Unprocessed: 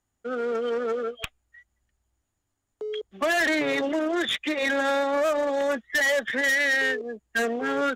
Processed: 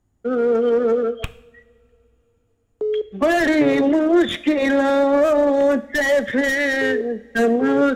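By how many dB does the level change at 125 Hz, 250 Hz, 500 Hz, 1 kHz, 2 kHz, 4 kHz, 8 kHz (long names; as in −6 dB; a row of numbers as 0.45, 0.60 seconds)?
can't be measured, +12.0 dB, +9.0 dB, +4.5 dB, +1.5 dB, 0.0 dB, −0.5 dB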